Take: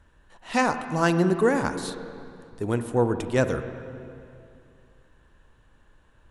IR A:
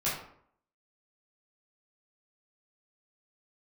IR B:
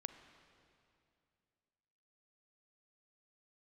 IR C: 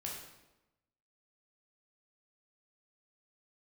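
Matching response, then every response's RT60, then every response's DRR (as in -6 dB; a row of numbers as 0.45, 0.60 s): B; 0.65, 2.5, 1.0 s; -10.0, 9.0, -3.0 dB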